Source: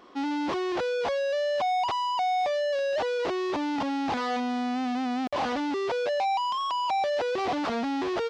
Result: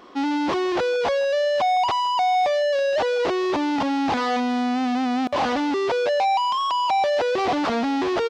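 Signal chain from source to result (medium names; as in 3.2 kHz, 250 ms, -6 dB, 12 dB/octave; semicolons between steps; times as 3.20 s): speakerphone echo 160 ms, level -17 dB; trim +6 dB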